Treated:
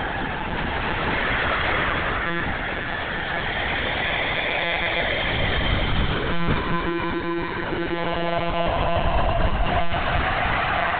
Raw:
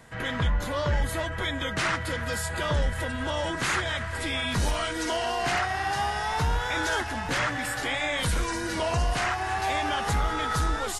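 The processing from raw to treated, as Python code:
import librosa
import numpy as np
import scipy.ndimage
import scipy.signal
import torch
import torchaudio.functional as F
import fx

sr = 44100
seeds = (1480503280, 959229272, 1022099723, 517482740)

y = fx.paulstretch(x, sr, seeds[0], factor=4.9, window_s=0.5, from_s=7.09)
y = fx.lpc_monotone(y, sr, seeds[1], pitch_hz=170.0, order=16)
y = y * 10.0 ** (5.0 / 20.0)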